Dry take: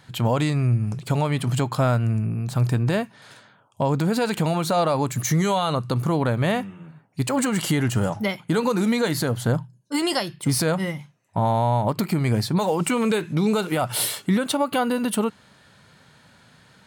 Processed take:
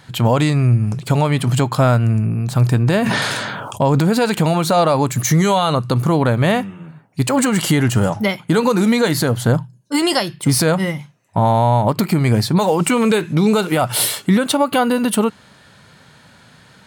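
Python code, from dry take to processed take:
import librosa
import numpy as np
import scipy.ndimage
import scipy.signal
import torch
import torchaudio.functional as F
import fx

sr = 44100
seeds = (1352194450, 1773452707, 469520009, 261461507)

y = fx.sustainer(x, sr, db_per_s=23.0, at=(3.01, 4.09), fade=0.02)
y = y * 10.0 ** (6.5 / 20.0)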